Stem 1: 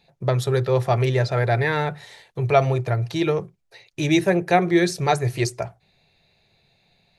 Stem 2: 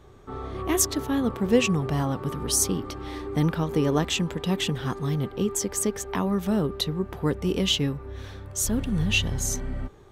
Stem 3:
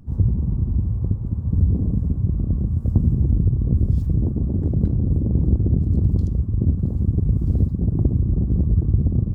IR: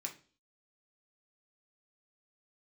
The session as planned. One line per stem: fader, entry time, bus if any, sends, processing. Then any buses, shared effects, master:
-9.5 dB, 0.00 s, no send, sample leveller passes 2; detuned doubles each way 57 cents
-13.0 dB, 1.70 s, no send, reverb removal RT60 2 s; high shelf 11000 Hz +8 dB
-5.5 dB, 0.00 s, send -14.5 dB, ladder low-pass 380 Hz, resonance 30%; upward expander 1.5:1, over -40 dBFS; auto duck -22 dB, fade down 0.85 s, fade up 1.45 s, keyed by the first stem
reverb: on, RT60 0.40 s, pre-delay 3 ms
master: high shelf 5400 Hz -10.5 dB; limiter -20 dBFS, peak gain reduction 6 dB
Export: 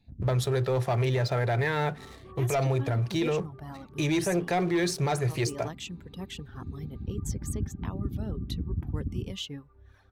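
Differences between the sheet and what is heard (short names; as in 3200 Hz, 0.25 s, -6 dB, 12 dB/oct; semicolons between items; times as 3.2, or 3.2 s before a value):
stem 1: missing detuned doubles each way 57 cents; stem 2: missing high shelf 11000 Hz +8 dB; master: missing high shelf 5400 Hz -10.5 dB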